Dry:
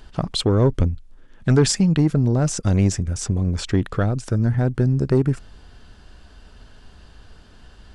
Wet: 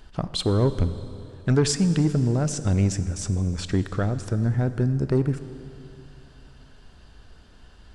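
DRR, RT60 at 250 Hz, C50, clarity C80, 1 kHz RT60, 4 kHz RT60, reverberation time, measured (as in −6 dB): 11.5 dB, 3.0 s, 12.0 dB, 13.0 dB, 2.9 s, 2.8 s, 2.9 s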